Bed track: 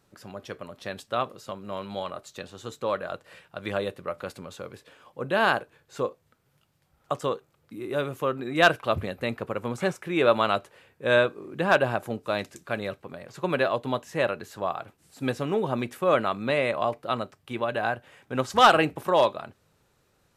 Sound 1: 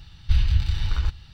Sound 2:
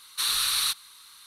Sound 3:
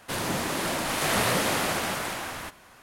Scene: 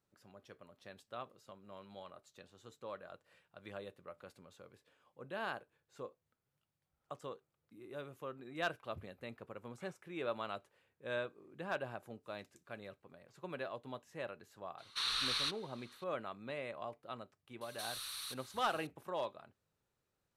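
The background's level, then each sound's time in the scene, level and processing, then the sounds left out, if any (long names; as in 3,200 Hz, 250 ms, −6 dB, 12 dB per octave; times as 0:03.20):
bed track −18.5 dB
0:14.78: mix in 2 −7 dB + low-pass filter 4,300 Hz
0:17.61: mix in 2 −7.5 dB + downward compressor 2.5 to 1, threshold −40 dBFS
not used: 1, 3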